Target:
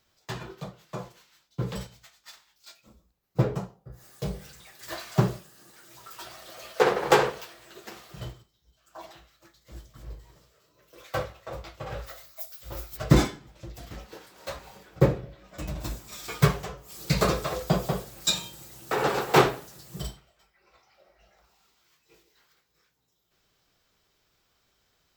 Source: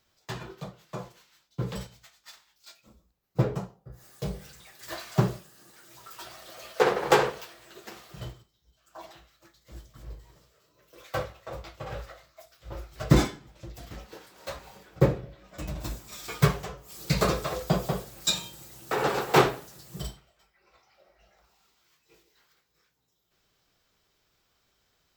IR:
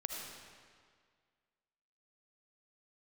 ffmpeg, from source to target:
-filter_complex "[0:a]asplit=3[a][b][c];[a]afade=t=out:st=12.06:d=0.02[d];[b]aemphasis=mode=production:type=75fm,afade=t=in:st=12.06:d=0.02,afade=t=out:st=12.96:d=0.02[e];[c]afade=t=in:st=12.96:d=0.02[f];[d][e][f]amix=inputs=3:normalize=0,volume=1dB"

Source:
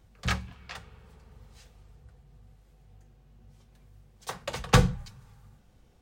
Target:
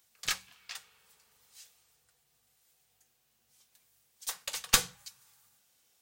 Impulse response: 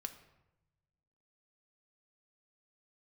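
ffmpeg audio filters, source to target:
-af "aderivative,aeval=exprs='0.188*(cos(1*acos(clip(val(0)/0.188,-1,1)))-cos(1*PI/2))+0.0944*(cos(2*acos(clip(val(0)/0.188,-1,1)))-cos(2*PI/2))':c=same,volume=7.5dB"

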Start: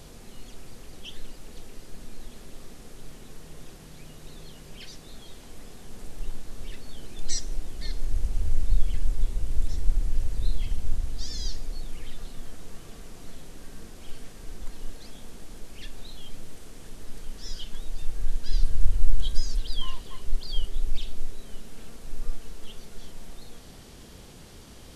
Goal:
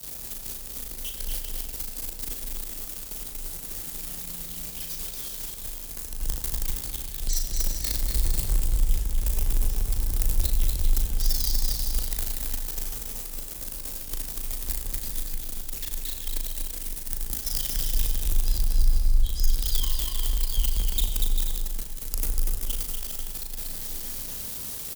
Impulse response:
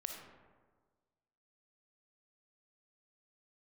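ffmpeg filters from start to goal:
-filter_complex "[0:a]aeval=exprs='val(0)+0.5*0.0891*sgn(val(0))':c=same,agate=range=-33dB:threshold=-15dB:ratio=3:detection=peak,aemphasis=mode=production:type=75fm,alimiter=limit=-10.5dB:level=0:latency=1:release=492,asplit=2[a][b];[1:a]atrim=start_sample=2205,asetrate=57330,aresample=44100,adelay=37[c];[b][c]afir=irnorm=-1:irlink=0,volume=0.5dB[d];[a][d]amix=inputs=2:normalize=0,acompressor=threshold=-20dB:ratio=6,aecho=1:1:240|396|497.4|563.3|606.2:0.631|0.398|0.251|0.158|0.1,afreqshift=18"

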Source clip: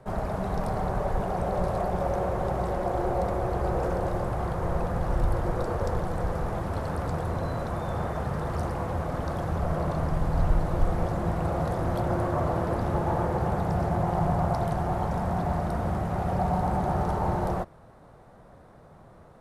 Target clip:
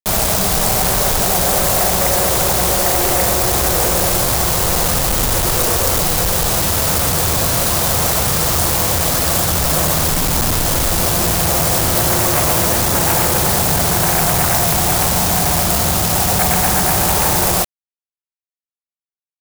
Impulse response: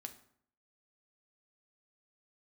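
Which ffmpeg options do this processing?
-af "aeval=exprs='0.299*sin(PI/2*3.98*val(0)/0.299)':c=same,acrusher=bits=3:mix=0:aa=0.000001,crystalizer=i=5.5:c=0,volume=-5dB"

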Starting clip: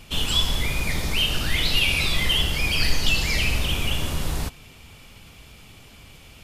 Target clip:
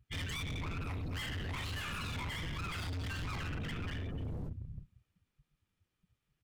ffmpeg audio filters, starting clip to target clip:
-filter_complex "[0:a]asplit=2[a][b];[b]adelay=349,lowpass=f=2k:p=1,volume=-11dB,asplit=2[c][d];[d]adelay=349,lowpass=f=2k:p=1,volume=0.18[e];[a][c][e]amix=inputs=3:normalize=0,aeval=exprs='val(0)*sin(2*PI*590*n/s)':c=same,asettb=1/sr,asplit=3[f][g][h];[f]atrim=end=0.794[i];[g]atrim=start=0.79:end=3.28,asetpts=PTS-STARTPTS,afade=t=in:d=0.004:c=qsin,afade=t=out:st=2.486:d=0.004:c=qsin,highshelf=f=9.9k:g=10.5[j];[h]atrim=start=3.276[k];[i][j]acrossfade=d=0.004:c1=hsin:c2=qsin[l];[l][k]acrossfade=d=0.004:c1=qsin:c2=hsin,afftdn=nr=31:nf=-31,afreqshift=-500,alimiter=limit=-17.5dB:level=0:latency=1:release=19,asoftclip=type=hard:threshold=-32dB,adynamicequalizer=threshold=0.00316:dfrequency=2600:dqfactor=0.7:tfrequency=2600:tqfactor=0.7:attack=5:release=100:ratio=0.375:range=3:mode=cutabove:tftype=highshelf,volume=-4.5dB"

